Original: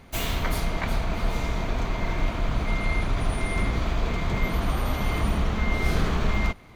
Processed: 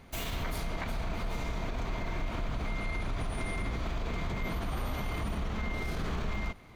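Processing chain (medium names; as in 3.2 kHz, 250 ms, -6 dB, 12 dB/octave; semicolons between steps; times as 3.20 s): peak limiter -21.5 dBFS, peak gain reduction 10.5 dB; trim -4 dB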